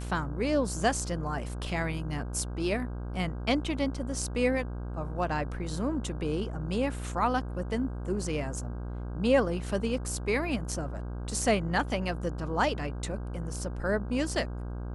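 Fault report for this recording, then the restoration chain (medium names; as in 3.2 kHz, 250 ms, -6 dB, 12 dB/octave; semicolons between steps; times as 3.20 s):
buzz 60 Hz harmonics 27 -36 dBFS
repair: de-hum 60 Hz, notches 27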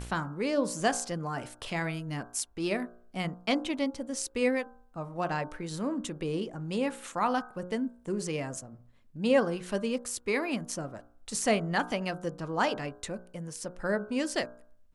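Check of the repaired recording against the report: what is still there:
nothing left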